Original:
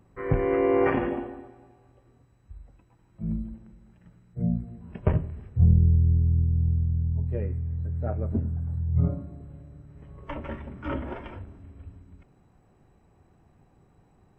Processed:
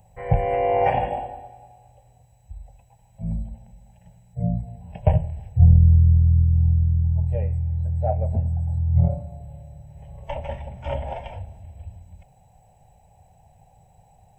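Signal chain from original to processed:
drawn EQ curve 110 Hz 0 dB, 170 Hz −4 dB, 330 Hz −25 dB, 540 Hz +1 dB, 820 Hz +8 dB, 1,200 Hz −21 dB, 1,700 Hz −9 dB, 2,700 Hz 0 dB, 4,900 Hz −1 dB, 8,000 Hz +9 dB
level +6 dB

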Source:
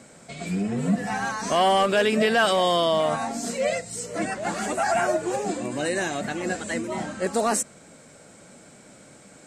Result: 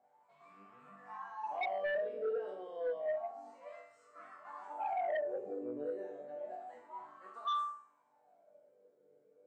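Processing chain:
loose part that buzzes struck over −29 dBFS, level −33 dBFS
0:05.14–0:05.81: low-shelf EQ 290 Hz +10.5 dB
resonators tuned to a chord G2 major, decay 0.67 s
LFO wah 0.3 Hz 450–1,200 Hz, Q 16
sine wavefolder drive 9 dB, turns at −33.5 dBFS
level +2.5 dB

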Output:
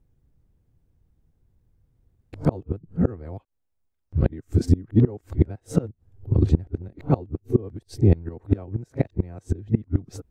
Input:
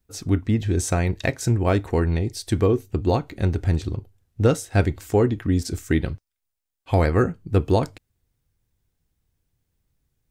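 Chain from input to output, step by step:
played backwards from end to start
gate with flip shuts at −14 dBFS, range −26 dB
tilt shelving filter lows +9.5 dB, about 1,300 Hz

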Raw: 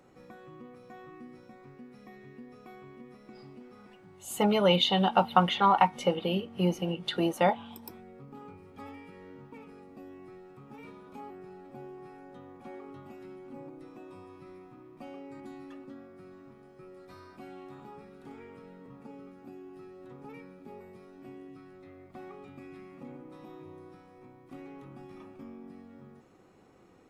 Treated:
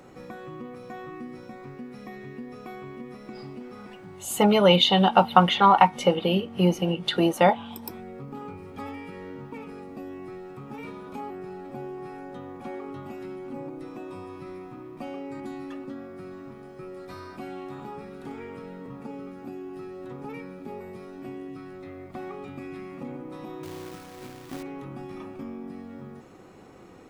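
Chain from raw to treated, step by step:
in parallel at −2.5 dB: downward compressor, threshold −47 dBFS, peak gain reduction 27.5 dB
0:23.63–0:24.63: on the sum: log-companded quantiser 4 bits
level +5.5 dB

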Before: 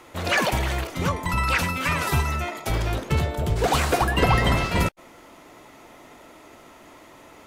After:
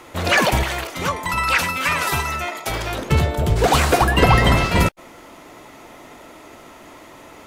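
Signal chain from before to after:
0:00.63–0:02.99: low-shelf EQ 330 Hz −11 dB
level +5.5 dB

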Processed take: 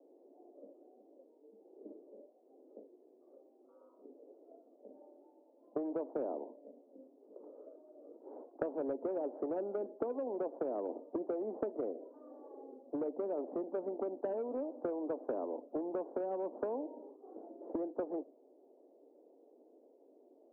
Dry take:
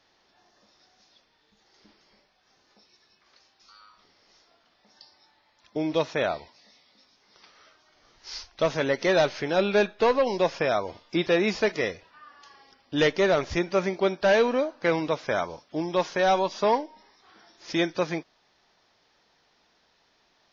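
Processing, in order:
Butterworth low-pass 560 Hz 36 dB per octave
noise reduction from a noise print of the clip's start 7 dB
Butterworth high-pass 260 Hz 72 dB per octave
downward compressor 5 to 1, threshold −34 dBFS, peak gain reduction 14 dB
every bin compressed towards the loudest bin 2 to 1
level +3 dB

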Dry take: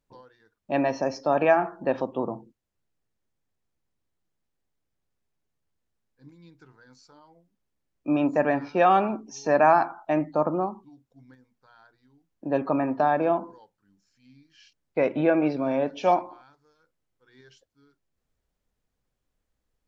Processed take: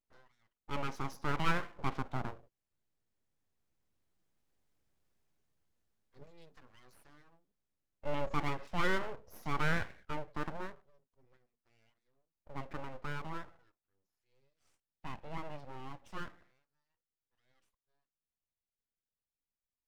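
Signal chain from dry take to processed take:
source passing by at 0:04.87, 5 m/s, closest 4.9 metres
full-wave rectification
level +2.5 dB

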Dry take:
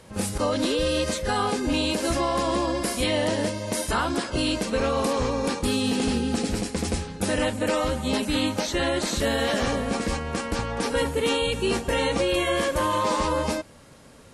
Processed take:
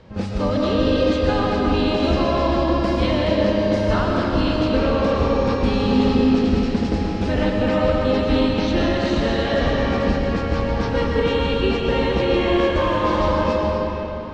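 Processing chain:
low-pass filter 5,100 Hz 24 dB per octave
spectral tilt −1.5 dB per octave
comb and all-pass reverb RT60 3.6 s, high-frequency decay 0.75×, pre-delay 80 ms, DRR −1.5 dB

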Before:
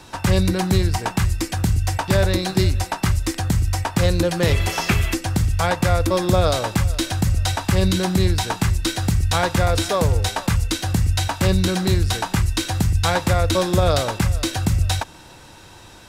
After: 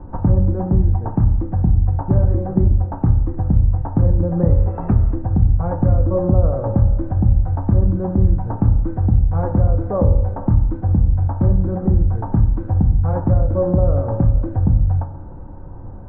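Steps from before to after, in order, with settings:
low-pass filter 1,200 Hz 24 dB per octave
spectral tilt −4 dB per octave
downward compressor 2 to 1, threshold −18 dBFS, peak gain reduction 11.5 dB
flanger 1.1 Hz, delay 3 ms, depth 6.4 ms, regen −71%
convolution reverb RT60 1.0 s, pre-delay 3 ms, DRR 7 dB
level +3.5 dB

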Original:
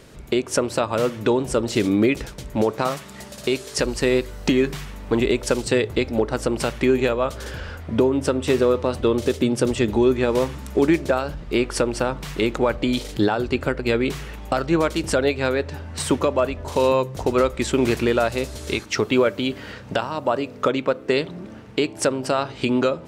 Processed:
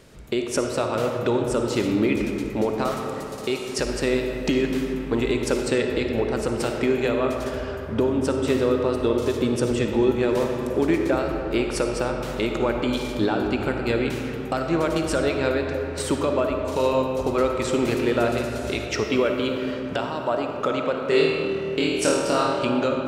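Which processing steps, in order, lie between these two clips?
0:20.92–0:22.59: flutter between parallel walls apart 4.4 metres, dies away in 0.79 s
comb and all-pass reverb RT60 3.3 s, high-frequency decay 0.45×, pre-delay 15 ms, DRR 2.5 dB
level −4 dB

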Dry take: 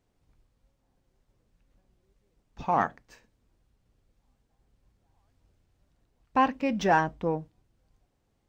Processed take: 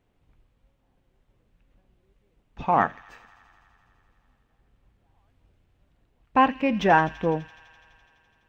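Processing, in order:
high shelf with overshoot 3,900 Hz −7 dB, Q 1.5
on a send: delay with a high-pass on its return 84 ms, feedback 83%, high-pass 2,800 Hz, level −12.5 dB
on the sum: level +4 dB

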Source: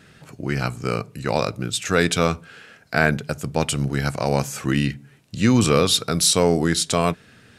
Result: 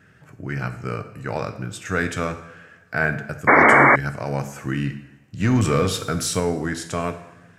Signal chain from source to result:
graphic EQ with 15 bands 100 Hz +8 dB, 1,600 Hz +6 dB, 4,000 Hz −10 dB, 10,000 Hz −7 dB
coupled-rooms reverb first 0.79 s, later 2.6 s, from −22 dB, DRR 7.5 dB
0:03.47–0:03.96: sound drawn into the spectrogram noise 210–2,300 Hz −6 dBFS
0:05.40–0:06.40: leveller curve on the samples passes 1
level −6.5 dB

